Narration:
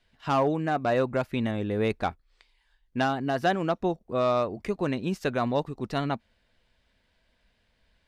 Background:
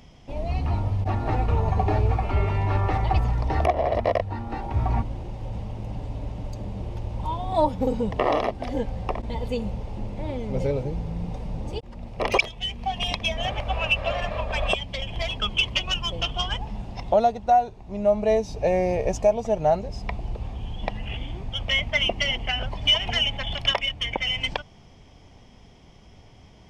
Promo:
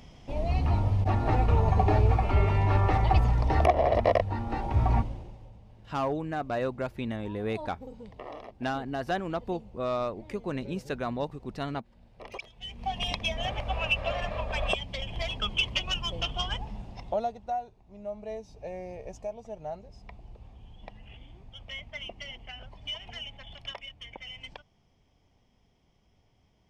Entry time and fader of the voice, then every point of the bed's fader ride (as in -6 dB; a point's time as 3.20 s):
5.65 s, -5.5 dB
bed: 4.98 s -0.5 dB
5.58 s -20 dB
12.40 s -20 dB
12.87 s -4.5 dB
16.56 s -4.5 dB
17.91 s -17 dB